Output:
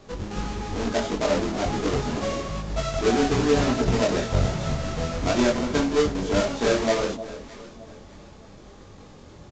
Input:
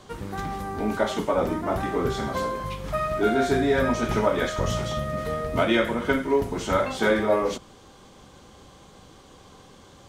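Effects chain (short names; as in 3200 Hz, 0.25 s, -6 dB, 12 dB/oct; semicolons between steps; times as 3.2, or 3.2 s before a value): half-waves squared off; bell 1800 Hz -4.5 dB 2.6 oct; reverse; upward compressor, threshold -39 dBFS; reverse; chorus voices 4, 0.94 Hz, delay 24 ms, depth 3 ms; varispeed +6%; on a send: echo with dull and thin repeats by turns 0.307 s, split 850 Hz, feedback 54%, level -12 dB; on the sum: downsampling 16000 Hz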